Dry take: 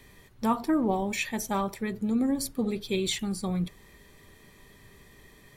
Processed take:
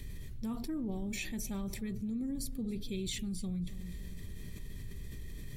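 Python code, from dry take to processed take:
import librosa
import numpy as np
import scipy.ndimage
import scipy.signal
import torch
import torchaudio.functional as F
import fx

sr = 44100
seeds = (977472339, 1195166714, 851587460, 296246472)

y = fx.tone_stack(x, sr, knobs='10-0-1')
y = fx.echo_feedback(y, sr, ms=277, feedback_pct=43, wet_db=-23.5)
y = fx.env_flatten(y, sr, amount_pct=70)
y = F.gain(torch.from_numpy(y), 6.0).numpy()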